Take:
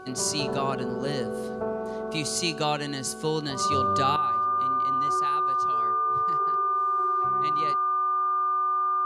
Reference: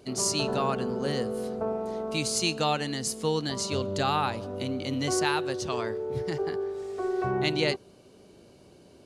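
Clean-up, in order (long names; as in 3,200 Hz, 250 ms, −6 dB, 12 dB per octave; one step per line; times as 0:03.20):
hum removal 374.6 Hz, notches 4
notch filter 1,200 Hz, Q 30
level 0 dB, from 0:04.16 +11 dB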